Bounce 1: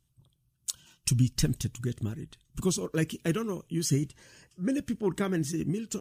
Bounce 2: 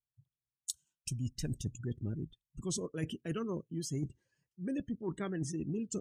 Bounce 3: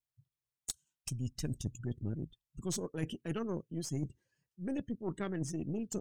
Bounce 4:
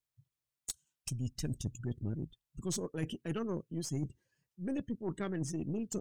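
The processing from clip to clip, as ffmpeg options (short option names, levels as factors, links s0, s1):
-af "afftdn=nr=30:nf=-41,areverse,acompressor=threshold=0.02:ratio=16,areverse,volume=1.12"
-af "aeval=exprs='0.188*(cos(1*acos(clip(val(0)/0.188,-1,1)))-cos(1*PI/2))+0.0119*(cos(8*acos(clip(val(0)/0.188,-1,1)))-cos(8*PI/2))':c=same,volume=0.891"
-af "asoftclip=type=tanh:threshold=0.0708,volume=1.12"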